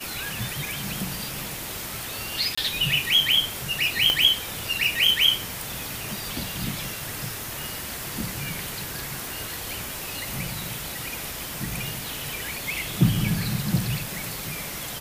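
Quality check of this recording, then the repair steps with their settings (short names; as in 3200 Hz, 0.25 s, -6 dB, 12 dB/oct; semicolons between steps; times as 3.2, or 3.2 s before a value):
2.55–2.58 gap 25 ms
4.1 pop -8 dBFS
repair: de-click; interpolate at 2.55, 25 ms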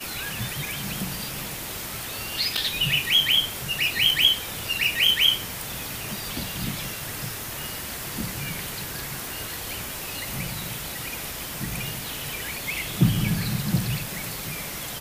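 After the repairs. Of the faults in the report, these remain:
none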